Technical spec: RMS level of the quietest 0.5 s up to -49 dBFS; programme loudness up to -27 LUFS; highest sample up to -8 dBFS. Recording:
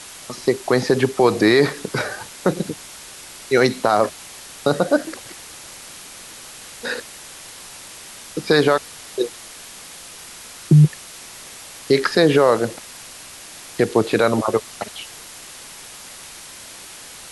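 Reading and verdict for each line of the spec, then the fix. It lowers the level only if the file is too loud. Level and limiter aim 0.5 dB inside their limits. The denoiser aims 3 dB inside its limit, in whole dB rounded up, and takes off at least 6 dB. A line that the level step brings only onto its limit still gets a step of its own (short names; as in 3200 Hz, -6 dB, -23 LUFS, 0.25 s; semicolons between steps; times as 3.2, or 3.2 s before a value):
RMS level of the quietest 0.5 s -39 dBFS: fail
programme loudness -19.0 LUFS: fail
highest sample -4.5 dBFS: fail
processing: denoiser 6 dB, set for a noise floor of -39 dBFS; gain -8.5 dB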